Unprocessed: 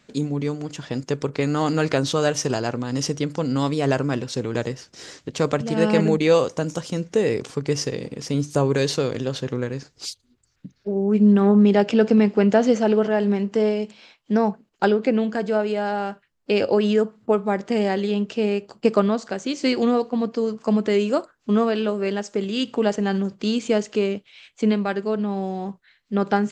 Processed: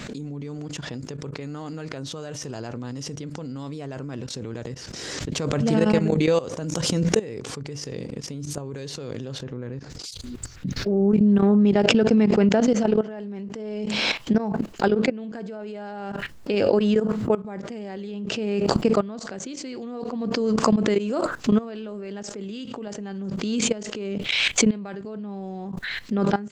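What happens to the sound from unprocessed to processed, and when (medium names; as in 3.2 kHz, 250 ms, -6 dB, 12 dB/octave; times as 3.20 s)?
9.43–9.90 s: low-pass 2.1 kHz 6 dB/octave
whole clip: level held to a coarse grid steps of 17 dB; bass shelf 290 Hz +5.5 dB; swell ahead of each attack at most 22 dB/s; trim -2.5 dB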